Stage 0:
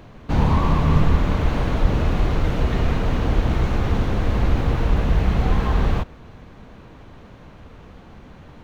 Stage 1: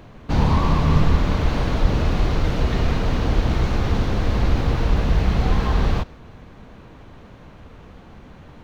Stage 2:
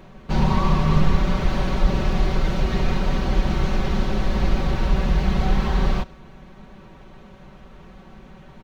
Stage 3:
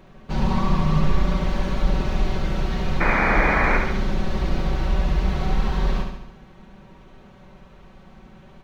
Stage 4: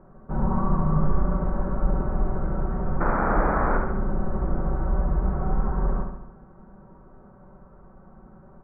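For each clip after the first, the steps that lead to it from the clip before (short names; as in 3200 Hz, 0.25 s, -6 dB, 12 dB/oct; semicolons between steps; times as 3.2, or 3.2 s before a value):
dynamic EQ 4800 Hz, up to +6 dB, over -53 dBFS, Q 1.5
comb 5.3 ms, depth 80%; gain -3 dB
painted sound noise, 3–3.78, 200–2500 Hz -18 dBFS; flutter echo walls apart 12 m, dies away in 0.81 s; gain -4 dB
Chebyshev low-pass 1400 Hz, order 4; gain -1.5 dB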